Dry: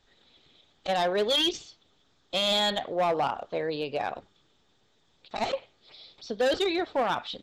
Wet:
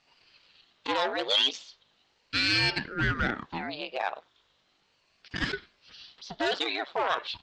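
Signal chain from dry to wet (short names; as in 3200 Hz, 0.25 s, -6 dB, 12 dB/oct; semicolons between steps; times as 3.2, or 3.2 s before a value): hum 50 Hz, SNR 20 dB; BPF 750–5200 Hz; ring modulator with a swept carrier 510 Hz, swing 90%, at 0.37 Hz; gain +5 dB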